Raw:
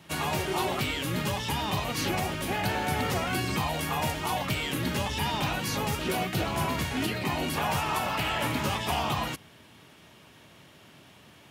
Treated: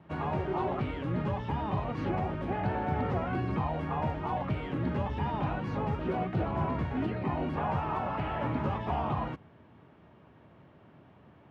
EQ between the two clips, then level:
low-pass filter 1,200 Hz 12 dB per octave
low-shelf EQ 140 Hz +3 dB
−1.5 dB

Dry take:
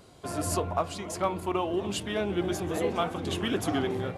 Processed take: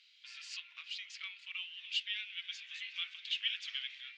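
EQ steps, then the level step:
Gaussian smoothing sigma 1.8 samples
Butterworth high-pass 2,400 Hz 36 dB per octave
high-frequency loss of the air 140 metres
+8.0 dB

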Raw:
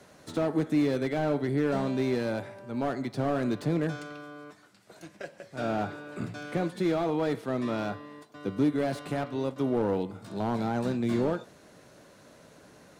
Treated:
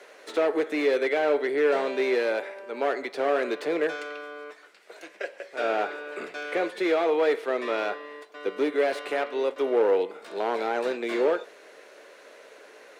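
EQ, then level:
four-pole ladder high-pass 380 Hz, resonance 55%
parametric band 2,200 Hz +11.5 dB 1.6 octaves
+9.0 dB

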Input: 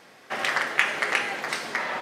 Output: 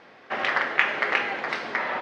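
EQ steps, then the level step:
high-frequency loss of the air 230 metres
parametric band 150 Hz −4 dB 0.95 octaves
+3.0 dB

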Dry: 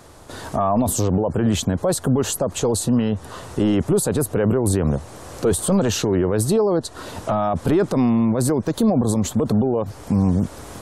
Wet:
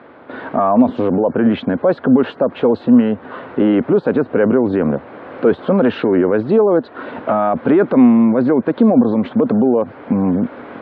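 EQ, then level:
high-frequency loss of the air 440 metres
loudspeaker in its box 250–3,800 Hz, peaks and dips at 250 Hz +8 dB, 520 Hz +3 dB, 1,500 Hz +6 dB, 2,200 Hz +5 dB
+6.0 dB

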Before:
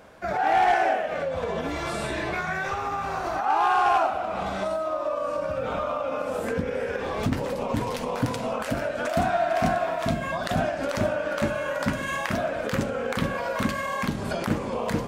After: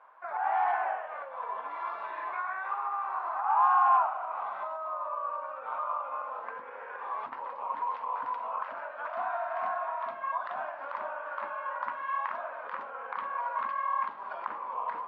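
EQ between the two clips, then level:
four-pole ladder band-pass 1,100 Hz, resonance 70%
high-frequency loss of the air 220 metres
+4.5 dB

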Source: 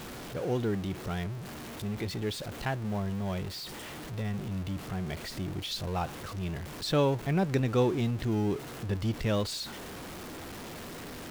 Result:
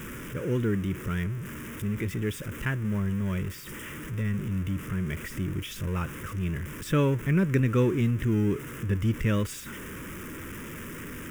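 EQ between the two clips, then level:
phaser with its sweep stopped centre 1,800 Hz, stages 4
+5.5 dB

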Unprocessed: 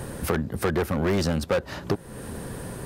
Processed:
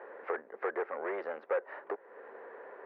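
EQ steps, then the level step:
elliptic band-pass filter 430–2,000 Hz, stop band 60 dB
−6.5 dB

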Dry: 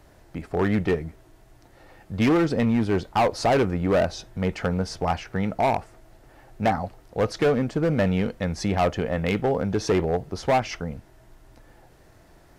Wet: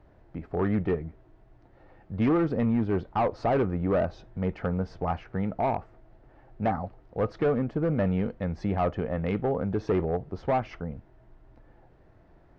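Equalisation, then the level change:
dynamic equaliser 1,200 Hz, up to +5 dB, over −45 dBFS, Q 6.3
head-to-tape spacing loss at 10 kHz 36 dB
−2.5 dB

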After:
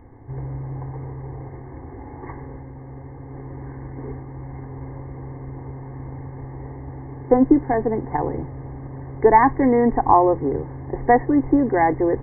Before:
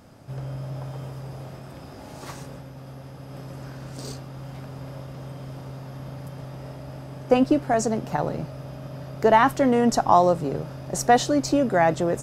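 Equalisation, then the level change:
linear-phase brick-wall low-pass 2,200 Hz
spectral tilt −2 dB per octave
phaser with its sweep stopped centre 910 Hz, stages 8
+4.5 dB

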